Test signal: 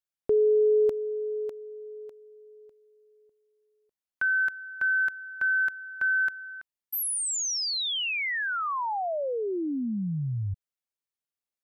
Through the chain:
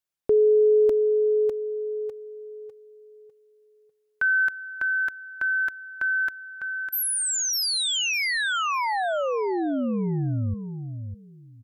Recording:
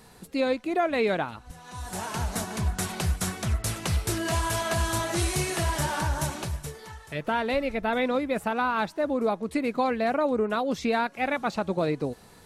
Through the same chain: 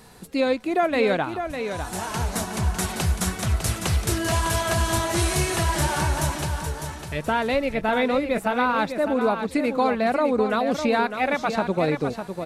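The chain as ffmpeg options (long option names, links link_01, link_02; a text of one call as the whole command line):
ffmpeg -i in.wav -af "aecho=1:1:603|1206|1809:0.398|0.0796|0.0159,volume=3.5dB" out.wav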